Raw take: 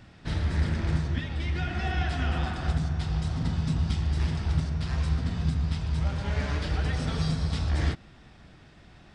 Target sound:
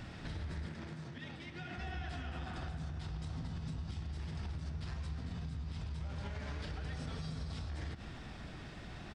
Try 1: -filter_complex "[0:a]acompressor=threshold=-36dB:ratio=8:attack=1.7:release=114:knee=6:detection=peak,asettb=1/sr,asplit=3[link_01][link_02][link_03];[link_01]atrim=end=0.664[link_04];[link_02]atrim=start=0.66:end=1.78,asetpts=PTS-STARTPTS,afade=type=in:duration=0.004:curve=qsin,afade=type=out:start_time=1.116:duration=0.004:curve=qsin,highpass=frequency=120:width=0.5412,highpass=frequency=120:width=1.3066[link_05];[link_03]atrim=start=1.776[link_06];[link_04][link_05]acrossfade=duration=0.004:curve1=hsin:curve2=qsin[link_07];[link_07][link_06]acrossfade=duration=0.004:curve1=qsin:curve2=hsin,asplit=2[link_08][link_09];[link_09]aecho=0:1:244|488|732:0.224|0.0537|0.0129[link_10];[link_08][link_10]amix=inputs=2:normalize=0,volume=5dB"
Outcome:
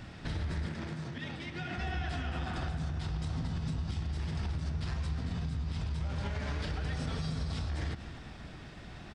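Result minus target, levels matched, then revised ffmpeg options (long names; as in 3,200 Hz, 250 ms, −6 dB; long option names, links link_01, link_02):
downward compressor: peak gain reduction −6.5 dB
-filter_complex "[0:a]acompressor=threshold=-43.5dB:ratio=8:attack=1.7:release=114:knee=6:detection=peak,asettb=1/sr,asplit=3[link_01][link_02][link_03];[link_01]atrim=end=0.664[link_04];[link_02]atrim=start=0.66:end=1.78,asetpts=PTS-STARTPTS,afade=type=in:duration=0.004:curve=qsin,afade=type=out:start_time=1.116:duration=0.004:curve=qsin,highpass=frequency=120:width=0.5412,highpass=frequency=120:width=1.3066[link_05];[link_03]atrim=start=1.776[link_06];[link_04][link_05]acrossfade=duration=0.004:curve1=hsin:curve2=qsin[link_07];[link_07][link_06]acrossfade=duration=0.004:curve1=qsin:curve2=hsin,asplit=2[link_08][link_09];[link_09]aecho=0:1:244|488|732:0.224|0.0537|0.0129[link_10];[link_08][link_10]amix=inputs=2:normalize=0,volume=5dB"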